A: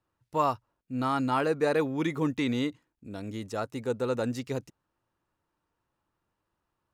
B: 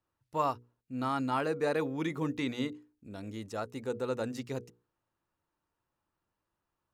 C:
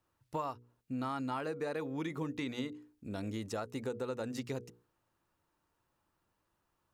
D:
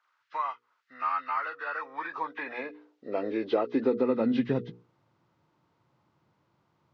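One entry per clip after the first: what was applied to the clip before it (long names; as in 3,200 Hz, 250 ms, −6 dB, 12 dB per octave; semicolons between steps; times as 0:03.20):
mains-hum notches 60/120/180/240/300/360/420/480 Hz; level −4 dB
downward compressor 6 to 1, threshold −40 dBFS, peak gain reduction 14.5 dB; level +5 dB
hearing-aid frequency compression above 1,100 Hz 1.5 to 1; Gaussian smoothing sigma 2 samples; high-pass filter sweep 1,400 Hz → 130 Hz, 0:01.64–0:04.94; level +9 dB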